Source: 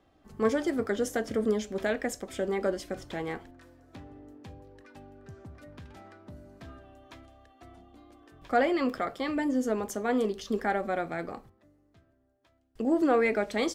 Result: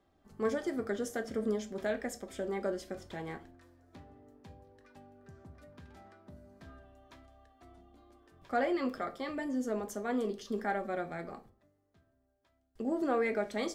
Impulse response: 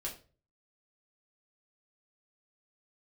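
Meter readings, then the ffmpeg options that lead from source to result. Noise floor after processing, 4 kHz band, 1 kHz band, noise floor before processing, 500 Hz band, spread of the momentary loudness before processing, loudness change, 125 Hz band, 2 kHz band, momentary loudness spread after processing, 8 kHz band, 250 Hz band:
-74 dBFS, -7.0 dB, -6.0 dB, -67 dBFS, -5.5 dB, 23 LU, -6.0 dB, -5.0 dB, -6.0 dB, 23 LU, -6.0 dB, -6.0 dB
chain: -filter_complex "[0:a]equalizer=f=2700:t=o:w=0.53:g=-3,asplit=2[s0][s1];[1:a]atrim=start_sample=2205,adelay=5[s2];[s1][s2]afir=irnorm=-1:irlink=0,volume=0.398[s3];[s0][s3]amix=inputs=2:normalize=0,volume=0.473"

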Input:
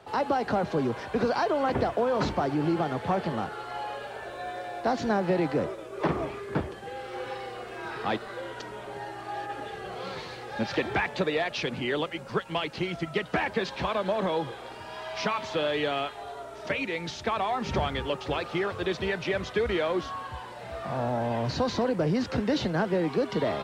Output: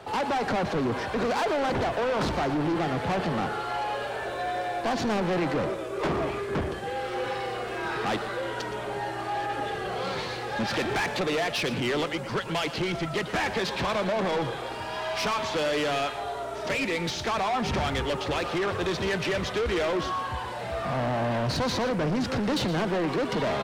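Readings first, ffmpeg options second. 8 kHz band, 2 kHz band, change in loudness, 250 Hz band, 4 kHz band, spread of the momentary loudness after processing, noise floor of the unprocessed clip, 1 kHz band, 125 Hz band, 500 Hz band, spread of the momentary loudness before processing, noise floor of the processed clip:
+7.5 dB, +3.0 dB, +1.5 dB, +1.0 dB, +4.0 dB, 5 LU, -42 dBFS, +2.0 dB, +1.5 dB, +0.5 dB, 11 LU, -35 dBFS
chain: -filter_complex "[0:a]asoftclip=type=tanh:threshold=0.0266,asplit=2[s0][s1];[s1]aecho=0:1:118:0.237[s2];[s0][s2]amix=inputs=2:normalize=0,volume=2.37"

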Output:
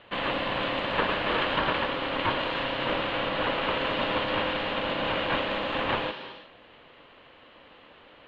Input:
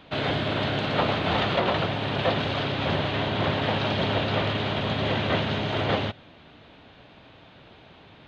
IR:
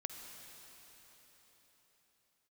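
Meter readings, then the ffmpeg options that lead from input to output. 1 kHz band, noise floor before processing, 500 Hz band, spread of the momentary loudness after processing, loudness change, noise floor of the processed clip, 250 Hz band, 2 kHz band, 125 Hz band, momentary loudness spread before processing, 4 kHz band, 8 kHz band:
-0.5 dB, -52 dBFS, -2.5 dB, 3 LU, -2.0 dB, -54 dBFS, -5.0 dB, +0.5 dB, -12.5 dB, 3 LU, -1.5 dB, no reading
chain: -filter_complex "[0:a]aeval=exprs='val(0)*sin(2*PI*410*n/s)':c=same,asplit=2[s0][s1];[s1]highpass=280,equalizer=f=420:t=q:w=4:g=8,equalizer=f=710:t=q:w=4:g=-6,equalizer=f=1700:t=q:w=4:g=5,equalizer=f=3000:t=q:w=4:g=8,lowpass=f=5900:w=0.5412,lowpass=f=5900:w=1.3066[s2];[1:a]atrim=start_sample=2205,afade=t=out:st=0.29:d=0.01,atrim=end_sample=13230,asetrate=28224,aresample=44100[s3];[s2][s3]afir=irnorm=-1:irlink=0,volume=1[s4];[s0][s4]amix=inputs=2:normalize=0,volume=0.596"

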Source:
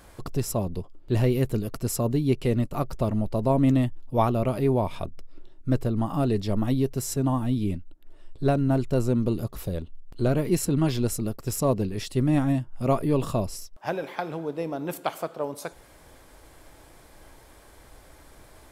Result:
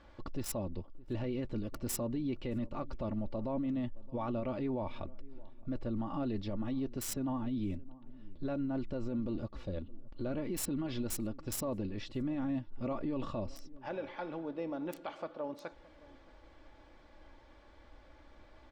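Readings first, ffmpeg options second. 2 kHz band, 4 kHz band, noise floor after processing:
-11.0 dB, -10.0 dB, -59 dBFS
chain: -filter_complex "[0:a]aecho=1:1:3.5:0.5,acrossover=split=4900[s0][s1];[s0]alimiter=limit=0.0944:level=0:latency=1:release=24[s2];[s1]acrusher=bits=4:mix=0:aa=0.000001[s3];[s2][s3]amix=inputs=2:normalize=0,asplit=2[s4][s5];[s5]adelay=619,lowpass=f=890:p=1,volume=0.0944,asplit=2[s6][s7];[s7]adelay=619,lowpass=f=890:p=1,volume=0.39,asplit=2[s8][s9];[s9]adelay=619,lowpass=f=890:p=1,volume=0.39[s10];[s4][s6][s8][s10]amix=inputs=4:normalize=0,volume=0.376"

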